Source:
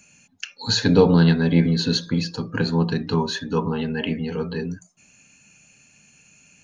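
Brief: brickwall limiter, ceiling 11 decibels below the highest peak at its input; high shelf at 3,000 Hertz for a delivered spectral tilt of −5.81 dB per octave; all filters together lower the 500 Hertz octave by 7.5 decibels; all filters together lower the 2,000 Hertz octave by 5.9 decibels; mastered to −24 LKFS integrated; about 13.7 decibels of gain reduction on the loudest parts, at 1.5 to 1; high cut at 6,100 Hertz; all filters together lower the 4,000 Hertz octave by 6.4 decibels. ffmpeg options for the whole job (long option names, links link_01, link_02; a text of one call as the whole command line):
ffmpeg -i in.wav -af "lowpass=6100,equalizer=frequency=500:width_type=o:gain=-8.5,equalizer=frequency=2000:width_type=o:gain=-7.5,highshelf=frequency=3000:gain=6,equalizer=frequency=4000:width_type=o:gain=-9,acompressor=threshold=-53dB:ratio=1.5,volume=17dB,alimiter=limit=-15.5dB:level=0:latency=1" out.wav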